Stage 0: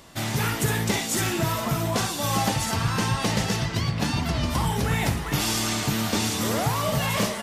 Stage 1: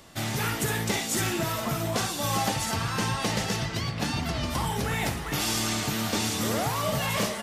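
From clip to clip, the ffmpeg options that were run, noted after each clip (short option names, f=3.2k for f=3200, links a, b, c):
-filter_complex "[0:a]acrossover=split=290[a][b];[a]alimiter=limit=-22.5dB:level=0:latency=1:release=244[c];[b]bandreject=f=990:w=24[d];[c][d]amix=inputs=2:normalize=0,volume=-2dB"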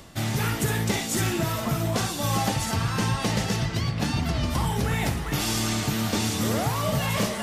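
-af "lowshelf=f=250:g=6.5,areverse,acompressor=mode=upward:threshold=-27dB:ratio=2.5,areverse"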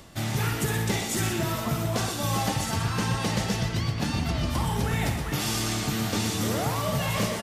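-af "aecho=1:1:123:0.398,volume=-2dB"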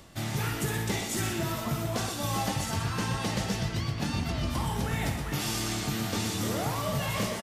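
-filter_complex "[0:a]asplit=2[a][b];[b]adelay=21,volume=-12dB[c];[a][c]amix=inputs=2:normalize=0,volume=-3.5dB"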